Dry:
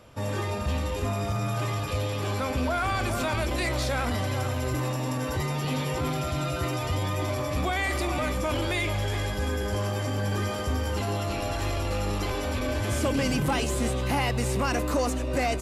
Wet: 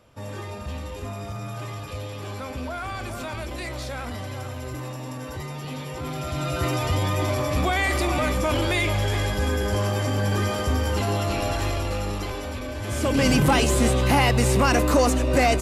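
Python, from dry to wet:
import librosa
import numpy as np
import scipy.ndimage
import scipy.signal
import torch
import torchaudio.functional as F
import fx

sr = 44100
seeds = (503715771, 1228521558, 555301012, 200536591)

y = fx.gain(x, sr, db=fx.line((5.92, -5.0), (6.67, 4.5), (11.48, 4.5), (12.75, -4.5), (13.28, 7.0)))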